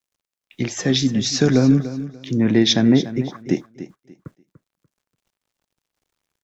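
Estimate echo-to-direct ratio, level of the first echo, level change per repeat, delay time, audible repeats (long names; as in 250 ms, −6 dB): −13.5 dB, −13.5 dB, −12.5 dB, 292 ms, 2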